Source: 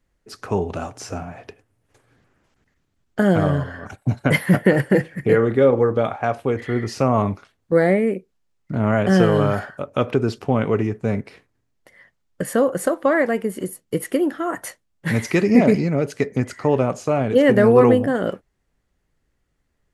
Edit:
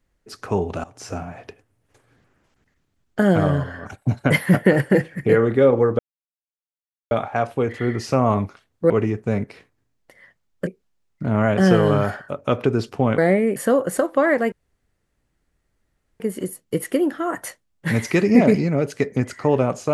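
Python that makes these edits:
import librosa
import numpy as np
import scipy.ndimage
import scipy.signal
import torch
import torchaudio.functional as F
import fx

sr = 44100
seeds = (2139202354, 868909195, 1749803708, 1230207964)

y = fx.edit(x, sr, fx.fade_in_from(start_s=0.84, length_s=0.27, floor_db=-19.0),
    fx.insert_silence(at_s=5.99, length_s=1.12),
    fx.swap(start_s=7.78, length_s=0.38, other_s=10.67, other_length_s=1.77),
    fx.insert_room_tone(at_s=13.4, length_s=1.68), tone=tone)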